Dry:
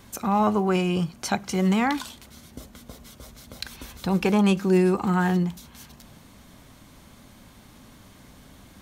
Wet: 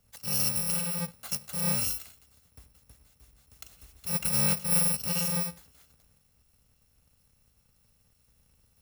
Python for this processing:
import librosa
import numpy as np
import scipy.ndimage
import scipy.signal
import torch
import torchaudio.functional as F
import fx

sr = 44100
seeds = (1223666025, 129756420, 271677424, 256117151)

y = fx.bit_reversed(x, sr, seeds[0], block=128)
y = fx.band_widen(y, sr, depth_pct=40)
y = y * librosa.db_to_amplitude(-7.5)